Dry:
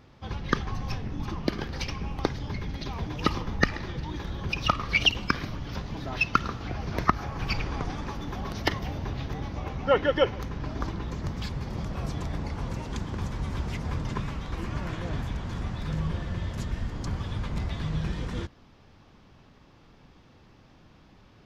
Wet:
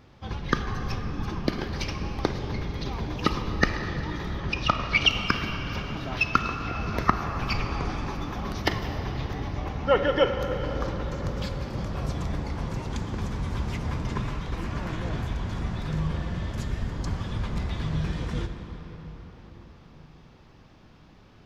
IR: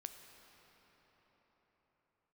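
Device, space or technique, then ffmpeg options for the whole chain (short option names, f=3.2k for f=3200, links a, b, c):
cathedral: -filter_complex "[1:a]atrim=start_sample=2205[a];[0:a][a]afir=irnorm=-1:irlink=0,asettb=1/sr,asplit=3[b][c][d];[b]atrim=end=4.404[e];[c]atrim=start=4.4:end=5.09,asetpts=PTS-STARTPTS,afade=t=in:d=0.004:c=qsin,afade=t=out:st=0.686:d=0.004:c=qsin,lowpass=6.6k[f];[d]atrim=start=5.086[g];[e][f]acrossfade=d=0.004:c1=hsin:c2=qsin[h];[h][g]acrossfade=d=0.004:c1=qsin:c2=hsin,volume=6dB"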